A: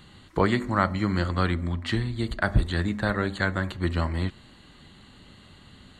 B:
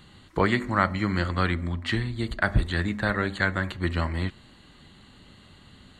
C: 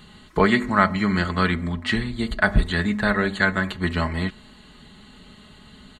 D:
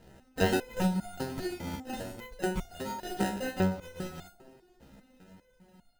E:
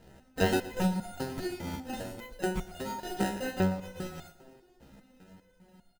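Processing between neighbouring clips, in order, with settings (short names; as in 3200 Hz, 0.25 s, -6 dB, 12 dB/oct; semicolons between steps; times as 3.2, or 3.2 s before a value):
dynamic EQ 2100 Hz, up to +5 dB, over -42 dBFS, Q 1.2; gain -1 dB
comb 4.7 ms, depth 56%; gain +3.5 dB
sample-and-hold 39×; band-limited delay 71 ms, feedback 73%, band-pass 440 Hz, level -13 dB; stepped resonator 5 Hz 67–710 Hz
feedback echo 0.117 s, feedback 44%, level -16.5 dB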